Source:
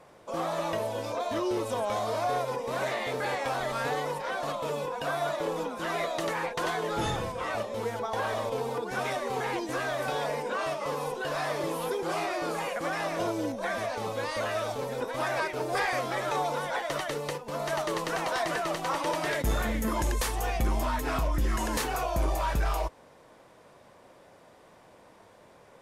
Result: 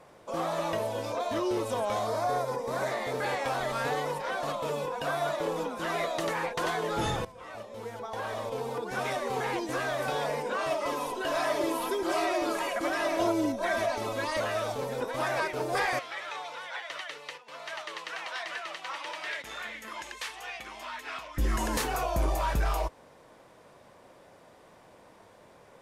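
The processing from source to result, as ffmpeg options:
-filter_complex "[0:a]asettb=1/sr,asplit=3[a][b][c];[a]atrim=end=2.074[d];[b]atrim=start=2.07:end=3.15,asetpts=PTS-STARTPTS,afade=t=in:d=0.004:c=qsin,afade=t=out:st=1.076:d=0.004:c=qsin,equalizer=f=2.8k:w=2.4:g=-9[e];[c]atrim=start=3.146[f];[d][e]acrossfade=d=0.004:c1=hsin:c2=qsin[g];[g][f]acrossfade=d=0.004:c1=qsin:c2=hsin,asettb=1/sr,asplit=3[h][i][j];[h]atrim=end=10.704[k];[i]atrim=start=10.7:end=14.4,asetpts=PTS-STARTPTS,afade=t=in:d=0.004:c=qsin,afade=t=out:st=3.696:d=0.004:c=qsin,aecho=1:1:3.1:0.77,atrim=end_sample=163170[l];[j]atrim=start=14.396[m];[k][l]acrossfade=d=0.004:c1=hsin:c2=qsin[n];[n][m]acrossfade=d=0.004:c1=qsin:c2=hsin,asplit=3[o][p][q];[o]afade=t=out:st=15.98:d=0.02[r];[p]bandpass=f=2.6k:t=q:w=1.1,afade=t=in:st=15.98:d=0.02,afade=t=out:st=21.37:d=0.02[s];[q]afade=t=in:st=21.37:d=0.02[t];[r][s][t]amix=inputs=3:normalize=0,asplit=2[u][v];[u]atrim=end=7.25,asetpts=PTS-STARTPTS,afade=t=out:st=7.246:d=0.004:c=hsin:silence=0.16788[w];[v]atrim=start=7.25,asetpts=PTS-STARTPTS,afade=t=in:d=1.96:silence=0.16788[x];[w][x]concat=n=2:v=0:a=1"

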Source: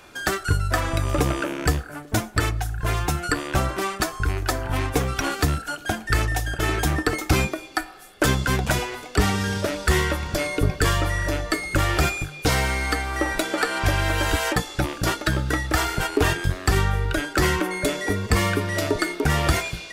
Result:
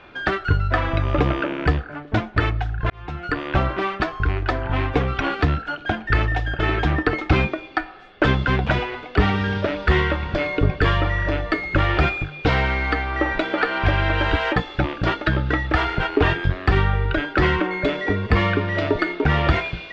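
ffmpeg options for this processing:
-filter_complex "[0:a]asplit=2[a][b];[a]atrim=end=2.9,asetpts=PTS-STARTPTS,afade=t=out:st=2.896:d=0.004:c=hsin[c];[b]atrim=start=2.9,asetpts=PTS-STARTPTS,afade=t=in:d=0.59[d];[c][d]concat=n=2:v=0:a=1,lowpass=f=3.4k:w=0.5412,lowpass=f=3.4k:w=1.3066,volume=2.5dB"

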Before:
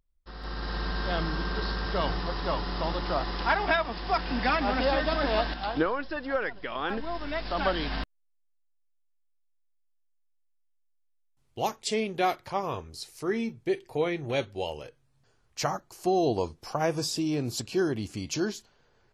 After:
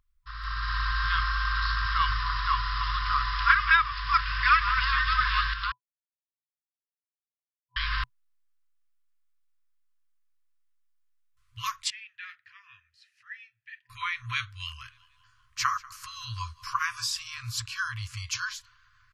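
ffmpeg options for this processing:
-filter_complex "[0:a]asettb=1/sr,asplit=3[a][b][c];[a]atrim=end=11.904[d];[b]atrim=start=11.9:end=13.9,asetpts=PTS-STARTPTS,afade=t=in:d=0.004:c=qsin,afade=t=out:st=1.996:d=0.004:c=qsin,asplit=3[e][f][g];[e]bandpass=f=530:t=q:w=8,volume=0dB[h];[f]bandpass=f=1.84k:t=q:w=8,volume=-6dB[i];[g]bandpass=f=2.48k:t=q:w=8,volume=-9dB[j];[h][i][j]amix=inputs=3:normalize=0[k];[c]atrim=start=13.896[l];[d][k]acrossfade=d=0.004:c1=hsin:c2=qsin[m];[m][l]acrossfade=d=0.004:c1=qsin:c2=hsin,asplit=3[n][o][p];[n]afade=t=out:st=14.85:d=0.02[q];[o]asplit=5[r][s][t][u][v];[s]adelay=189,afreqshift=40,volume=-22dB[w];[t]adelay=378,afreqshift=80,volume=-27.7dB[x];[u]adelay=567,afreqshift=120,volume=-33.4dB[y];[v]adelay=756,afreqshift=160,volume=-39dB[z];[r][w][x][y][z]amix=inputs=5:normalize=0,afade=t=in:st=14.85:d=0.02,afade=t=out:st=16.85:d=0.02[aa];[p]afade=t=in:st=16.85:d=0.02[ab];[q][aa][ab]amix=inputs=3:normalize=0,asplit=3[ac][ad][ae];[ac]atrim=end=5.72,asetpts=PTS-STARTPTS,afade=t=out:st=5.716:d=0.004:c=hsin[af];[ad]atrim=start=5.72:end=7.76,asetpts=PTS-STARTPTS,volume=0[ag];[ae]atrim=start=7.76,asetpts=PTS-STARTPTS,afade=t=in:d=0.004:c=hsin[ah];[af][ag][ah]concat=n=3:v=0:a=1,equalizer=f=1.2k:t=o:w=1.8:g=6.5,afftfilt=real='re*(1-between(b*sr/4096,120,1000))':imag='im*(1-between(b*sr/4096,120,1000))':win_size=4096:overlap=0.75,equalizer=f=11k:t=o:w=1.5:g=-2.5,volume=2.5dB"

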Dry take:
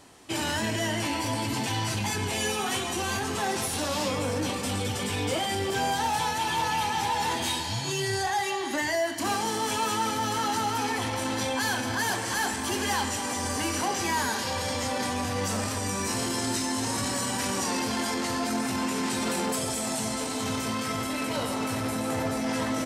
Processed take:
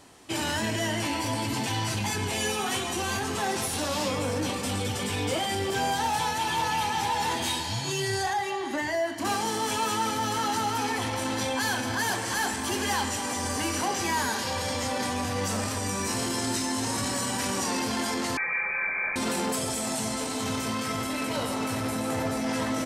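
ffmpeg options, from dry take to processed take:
-filter_complex "[0:a]asettb=1/sr,asplit=3[a][b][c];[a]atrim=end=8.334[d];[b]atrim=start=8.33:end=9.25,asetpts=PTS-STARTPTS,afade=t=in:d=0.004:c=qsin,afade=t=out:st=0.916:d=0.004:c=qsin,highshelf=f=3k:g=-8[e];[c]atrim=start=9.246[f];[d][e]acrossfade=d=0.004:c1=hsin:c2=qsin[g];[g][f]acrossfade=d=0.004:c1=qsin:c2=hsin,asettb=1/sr,asplit=3[h][i][j];[h]atrim=end=18.374[k];[i]atrim=start=18.37:end=19.16,asetpts=PTS-STARTPTS,afade=t=in:d=0.004:c=qsin,afade=t=out:st=0.786:d=0.004:c=qsin,lowpass=f=2.2k:t=q:w=0.5098,lowpass=f=2.2k:t=q:w=0.6013,lowpass=f=2.2k:t=q:w=0.9,lowpass=f=2.2k:t=q:w=2.563,afreqshift=-2600[l];[j]atrim=start=19.156[m];[k][l]acrossfade=d=0.004:c1=hsin:c2=qsin[n];[n][m]acrossfade=d=0.004:c1=qsin:c2=hsin"

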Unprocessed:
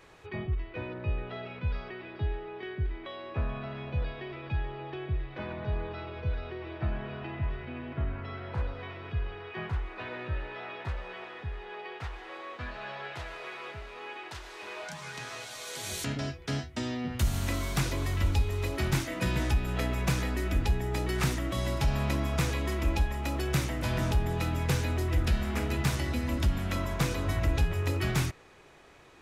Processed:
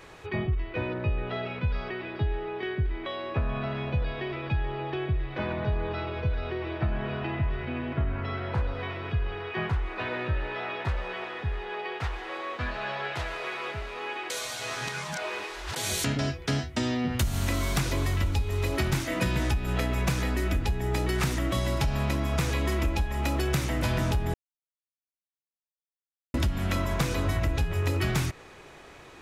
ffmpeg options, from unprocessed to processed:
-filter_complex "[0:a]asplit=5[a][b][c][d][e];[a]atrim=end=14.302[f];[b]atrim=start=14.298:end=15.762,asetpts=PTS-STARTPTS,areverse[g];[c]atrim=start=15.758:end=24.34,asetpts=PTS-STARTPTS,afade=t=out:st=8.578:d=0.004:c=hsin[h];[d]atrim=start=24.34:end=26.34,asetpts=PTS-STARTPTS,volume=0[i];[e]atrim=start=26.34,asetpts=PTS-STARTPTS,afade=t=in:d=0.004:c=hsin[j];[f][g]acrossfade=d=0.004:c1=hsin:c2=hsin[k];[h][i][j]concat=n=3:v=0:a=1[l];[k][l]acrossfade=d=0.004:c1=hsin:c2=hsin,acompressor=threshold=-30dB:ratio=6,volume=7dB"

